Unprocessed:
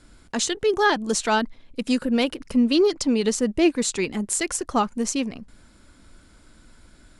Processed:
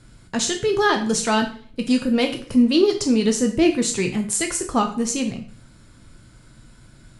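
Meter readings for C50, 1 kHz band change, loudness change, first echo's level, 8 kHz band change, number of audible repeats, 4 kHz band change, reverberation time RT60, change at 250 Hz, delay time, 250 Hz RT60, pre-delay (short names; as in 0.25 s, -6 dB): 10.0 dB, +0.5 dB, +2.5 dB, none, +2.5 dB, none, +2.0 dB, 0.45 s, +3.0 dB, none, 0.50 s, 7 ms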